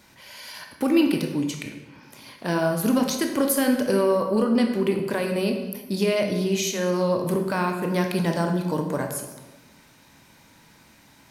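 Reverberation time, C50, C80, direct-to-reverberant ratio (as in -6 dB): 1.2 s, 6.0 dB, 8.0 dB, 3.0 dB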